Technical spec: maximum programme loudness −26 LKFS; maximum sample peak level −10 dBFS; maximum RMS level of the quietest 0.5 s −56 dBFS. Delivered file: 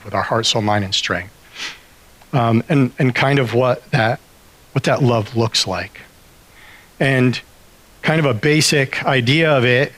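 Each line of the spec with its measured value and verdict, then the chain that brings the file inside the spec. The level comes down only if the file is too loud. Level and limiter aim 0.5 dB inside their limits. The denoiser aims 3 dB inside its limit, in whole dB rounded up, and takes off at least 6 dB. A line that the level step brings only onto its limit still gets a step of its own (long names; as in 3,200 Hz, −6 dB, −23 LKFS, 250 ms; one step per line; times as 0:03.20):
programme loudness −16.5 LKFS: out of spec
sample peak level −4.5 dBFS: out of spec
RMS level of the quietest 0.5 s −47 dBFS: out of spec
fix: level −10 dB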